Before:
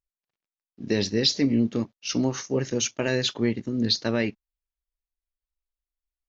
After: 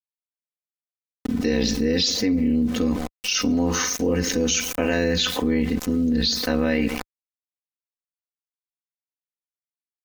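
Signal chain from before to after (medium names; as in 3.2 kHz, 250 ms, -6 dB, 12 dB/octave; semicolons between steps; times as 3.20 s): on a send: feedback delay 87 ms, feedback 19%, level -24 dB; on the sum: small samples zeroed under -46.5 dBFS; dynamic bell 4.9 kHz, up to -6 dB, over -39 dBFS, Q 0.95; in parallel at +2 dB: peak limiter -21 dBFS, peak gain reduction 9 dB; on the sum: bass shelf 66 Hz +4 dB; granular stretch 1.6×, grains 21 ms; level flattener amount 70%; trim -4 dB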